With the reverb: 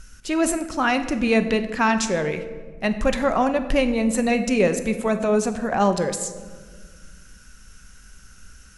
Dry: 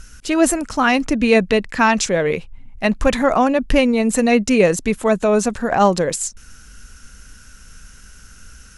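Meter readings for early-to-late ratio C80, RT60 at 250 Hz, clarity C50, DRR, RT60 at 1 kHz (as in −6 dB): 12.5 dB, 2.5 s, 11.0 dB, 8.5 dB, 1.4 s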